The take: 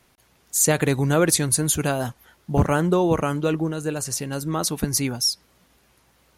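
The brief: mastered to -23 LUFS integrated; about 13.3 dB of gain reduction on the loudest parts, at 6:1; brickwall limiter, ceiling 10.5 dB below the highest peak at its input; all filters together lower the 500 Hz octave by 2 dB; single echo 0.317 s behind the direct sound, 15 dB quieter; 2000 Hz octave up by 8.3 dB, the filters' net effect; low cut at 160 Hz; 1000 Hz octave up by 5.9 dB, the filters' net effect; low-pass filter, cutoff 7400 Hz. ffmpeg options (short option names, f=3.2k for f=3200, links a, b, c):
-af "highpass=160,lowpass=7.4k,equalizer=f=500:t=o:g=-4.5,equalizer=f=1k:t=o:g=6.5,equalizer=f=2k:t=o:g=9,acompressor=threshold=-27dB:ratio=6,alimiter=limit=-24dB:level=0:latency=1,aecho=1:1:317:0.178,volume=12dB"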